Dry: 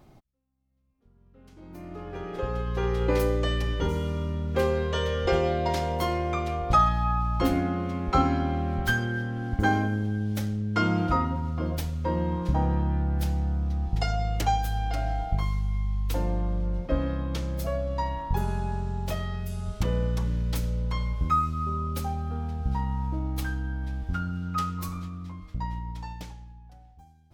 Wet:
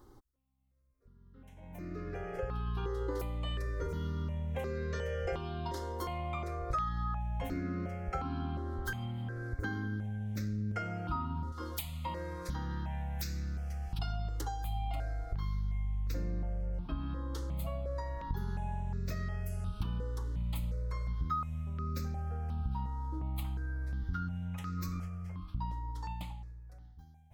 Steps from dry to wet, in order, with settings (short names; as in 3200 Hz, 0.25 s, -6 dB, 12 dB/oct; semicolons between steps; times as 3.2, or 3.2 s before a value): 11.52–13.99 tilt shelf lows -8.5 dB, about 1300 Hz; compressor 4:1, threshold -32 dBFS, peak gain reduction 13.5 dB; step phaser 2.8 Hz 660–3100 Hz